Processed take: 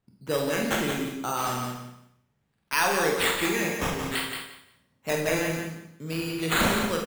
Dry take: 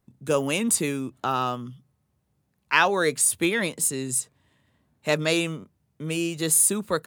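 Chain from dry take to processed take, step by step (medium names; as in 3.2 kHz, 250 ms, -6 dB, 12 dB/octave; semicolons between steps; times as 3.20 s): 1.37–2.75 s: block-companded coder 3-bit; in parallel at -10.5 dB: integer overflow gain 11 dB; on the sum: decimation with a swept rate 8×, swing 60% 0.61 Hz; feedback delay 176 ms, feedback 20%, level -6 dB; Schroeder reverb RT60 0.55 s, combs from 33 ms, DRR 1.5 dB; trim -7.5 dB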